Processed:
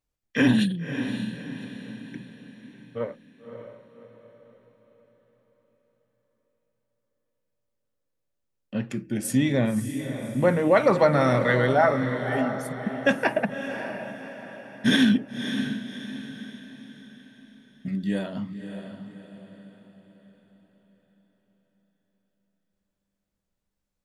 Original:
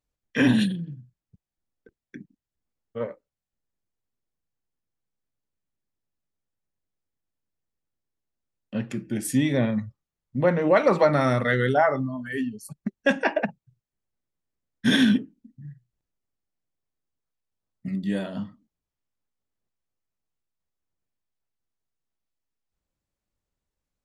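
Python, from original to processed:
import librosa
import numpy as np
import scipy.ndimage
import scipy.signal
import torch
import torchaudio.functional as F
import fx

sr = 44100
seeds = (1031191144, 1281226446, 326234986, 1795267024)

y = fx.echo_diffused(x, sr, ms=580, feedback_pct=45, wet_db=-8.5)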